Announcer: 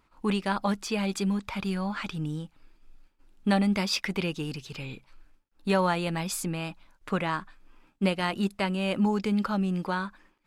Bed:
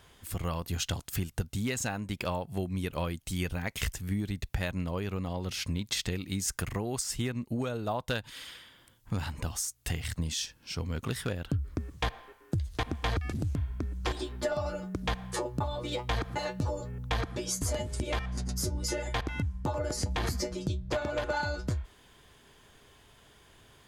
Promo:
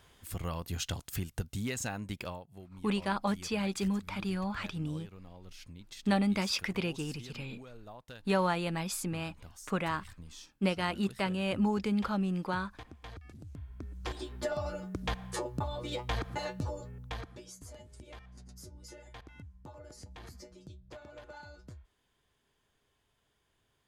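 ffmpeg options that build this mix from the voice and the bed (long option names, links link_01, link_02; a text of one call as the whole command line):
ffmpeg -i stem1.wav -i stem2.wav -filter_complex "[0:a]adelay=2600,volume=-4dB[link_01];[1:a]volume=10.5dB,afade=type=out:start_time=2.11:duration=0.36:silence=0.211349,afade=type=in:start_time=13.45:duration=1.06:silence=0.199526,afade=type=out:start_time=16.44:duration=1.09:silence=0.177828[link_02];[link_01][link_02]amix=inputs=2:normalize=0" out.wav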